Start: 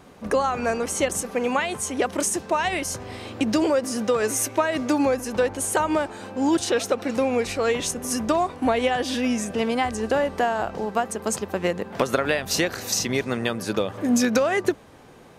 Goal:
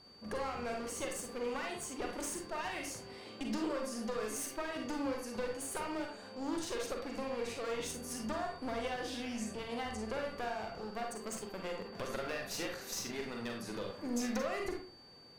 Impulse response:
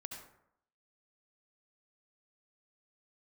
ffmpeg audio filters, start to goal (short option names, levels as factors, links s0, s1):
-filter_complex "[0:a]aeval=exprs='val(0)+0.00708*sin(2*PI*4600*n/s)':c=same,aeval=exprs='clip(val(0),-1,0.0501)':c=same[s0];[1:a]atrim=start_sample=2205,asetrate=79380,aresample=44100[s1];[s0][s1]afir=irnorm=-1:irlink=0,volume=0.562"